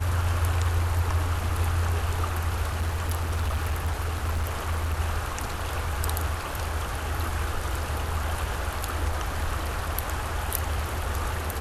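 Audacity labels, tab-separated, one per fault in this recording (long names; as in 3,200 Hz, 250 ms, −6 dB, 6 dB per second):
2.670000	4.940000	clipping −22.5 dBFS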